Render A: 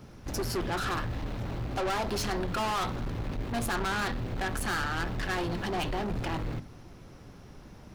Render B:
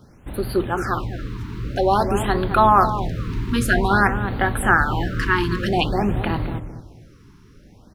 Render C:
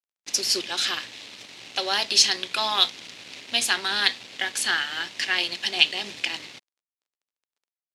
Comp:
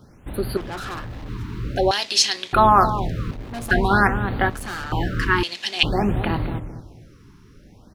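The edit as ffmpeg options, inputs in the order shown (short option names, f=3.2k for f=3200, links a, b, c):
-filter_complex "[0:a]asplit=3[a][b][c];[2:a]asplit=2[d][e];[1:a]asplit=6[f][g][h][i][j][k];[f]atrim=end=0.572[l];[a]atrim=start=0.568:end=1.292[m];[g]atrim=start=1.288:end=1.912[n];[d]atrim=start=1.908:end=2.532[o];[h]atrim=start=2.528:end=3.312[p];[b]atrim=start=3.308:end=3.712[q];[i]atrim=start=3.708:end=4.502[r];[c]atrim=start=4.498:end=4.922[s];[j]atrim=start=4.918:end=5.432[t];[e]atrim=start=5.428:end=5.832[u];[k]atrim=start=5.828[v];[l][m]acrossfade=d=0.004:c1=hsin:c2=hsin[w];[w][n]acrossfade=d=0.004:c1=hsin:c2=hsin[x];[x][o]acrossfade=d=0.004:c1=hsin:c2=hsin[y];[y][p]acrossfade=d=0.004:c1=hsin:c2=hsin[z];[z][q]acrossfade=d=0.004:c1=hsin:c2=hsin[aa];[aa][r]acrossfade=d=0.004:c1=hsin:c2=hsin[ab];[ab][s]acrossfade=d=0.004:c1=hsin:c2=hsin[ac];[ac][t]acrossfade=d=0.004:c1=hsin:c2=hsin[ad];[ad][u]acrossfade=d=0.004:c1=hsin:c2=hsin[ae];[ae][v]acrossfade=d=0.004:c1=hsin:c2=hsin"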